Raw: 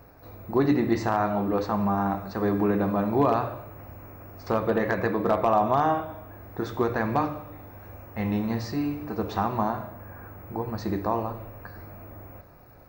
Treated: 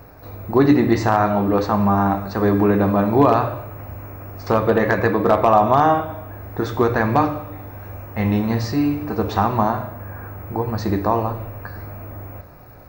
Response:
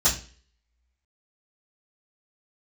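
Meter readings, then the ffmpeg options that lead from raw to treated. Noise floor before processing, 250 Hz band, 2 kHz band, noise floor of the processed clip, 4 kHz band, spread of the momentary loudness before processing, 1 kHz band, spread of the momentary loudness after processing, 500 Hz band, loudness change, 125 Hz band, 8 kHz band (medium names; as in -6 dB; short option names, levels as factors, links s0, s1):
-51 dBFS, +7.5 dB, +8.0 dB, -42 dBFS, +8.0 dB, 20 LU, +7.5 dB, 19 LU, +7.5 dB, +8.0 dB, +9.5 dB, no reading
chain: -filter_complex "[0:a]asplit=2[s0][s1];[1:a]atrim=start_sample=2205[s2];[s1][s2]afir=irnorm=-1:irlink=0,volume=0.0335[s3];[s0][s3]amix=inputs=2:normalize=0,volume=2.51"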